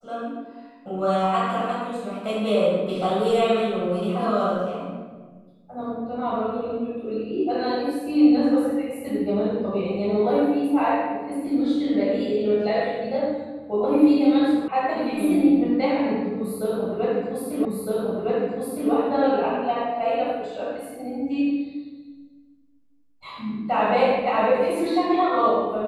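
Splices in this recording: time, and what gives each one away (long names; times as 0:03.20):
0:14.68: cut off before it has died away
0:17.65: the same again, the last 1.26 s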